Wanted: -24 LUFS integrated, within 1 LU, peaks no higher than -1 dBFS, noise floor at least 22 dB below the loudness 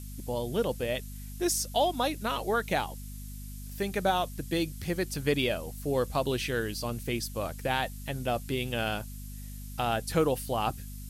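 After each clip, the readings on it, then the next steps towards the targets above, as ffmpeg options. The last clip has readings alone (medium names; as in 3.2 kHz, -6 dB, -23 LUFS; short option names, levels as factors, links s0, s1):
hum 50 Hz; highest harmonic 250 Hz; hum level -39 dBFS; noise floor -41 dBFS; noise floor target -53 dBFS; loudness -31.0 LUFS; peak level -13.0 dBFS; loudness target -24.0 LUFS
-> -af "bandreject=f=50:t=h:w=6,bandreject=f=100:t=h:w=6,bandreject=f=150:t=h:w=6,bandreject=f=200:t=h:w=6,bandreject=f=250:t=h:w=6"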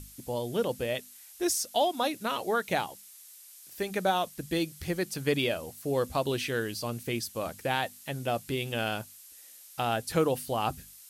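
hum not found; noise floor -52 dBFS; noise floor target -53 dBFS
-> -af "afftdn=nr=6:nf=-52"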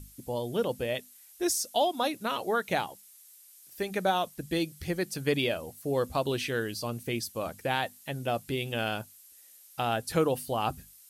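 noise floor -55 dBFS; loudness -31.0 LUFS; peak level -13.5 dBFS; loudness target -24.0 LUFS
-> -af "volume=2.24"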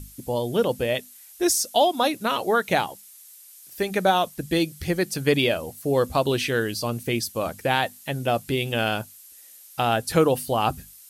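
loudness -24.0 LUFS; peak level -6.5 dBFS; noise floor -48 dBFS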